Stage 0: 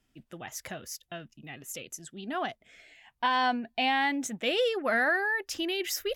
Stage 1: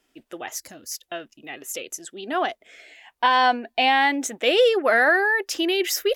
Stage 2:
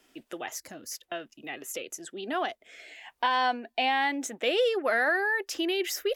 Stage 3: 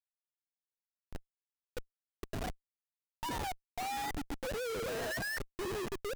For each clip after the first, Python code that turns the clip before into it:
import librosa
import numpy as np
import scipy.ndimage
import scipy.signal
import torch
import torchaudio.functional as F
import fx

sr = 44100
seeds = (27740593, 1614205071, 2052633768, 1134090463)

y1 = fx.spec_box(x, sr, start_s=0.59, length_s=0.32, low_hz=340.0, high_hz=4000.0, gain_db=-14)
y1 = fx.low_shelf_res(y1, sr, hz=240.0, db=-13.5, q=1.5)
y1 = y1 * 10.0 ** (7.5 / 20.0)
y2 = fx.band_squash(y1, sr, depth_pct=40)
y2 = y2 * 10.0 ** (-7.0 / 20.0)
y3 = fx.sine_speech(y2, sr)
y3 = fx.echo_stepped(y3, sr, ms=128, hz=320.0, octaves=0.7, feedback_pct=70, wet_db=-8.0)
y3 = fx.schmitt(y3, sr, flips_db=-32.5)
y3 = y3 * 10.0 ** (-7.0 / 20.0)